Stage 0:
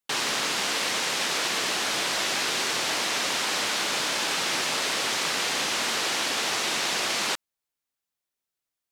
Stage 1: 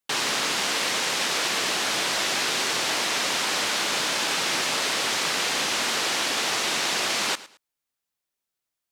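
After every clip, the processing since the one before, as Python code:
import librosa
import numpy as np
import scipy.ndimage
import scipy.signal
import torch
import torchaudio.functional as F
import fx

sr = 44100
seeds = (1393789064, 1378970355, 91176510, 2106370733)

y = fx.echo_feedback(x, sr, ms=109, feedback_pct=25, wet_db=-18)
y = y * librosa.db_to_amplitude(1.5)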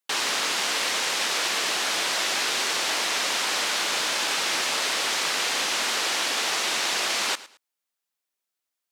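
y = fx.highpass(x, sr, hz=390.0, slope=6)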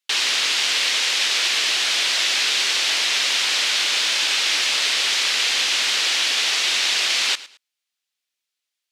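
y = fx.weighting(x, sr, curve='D')
y = y * librosa.db_to_amplitude(-3.5)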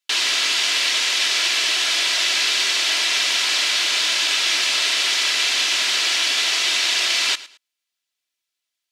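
y = x + 0.38 * np.pad(x, (int(3.0 * sr / 1000.0), 0))[:len(x)]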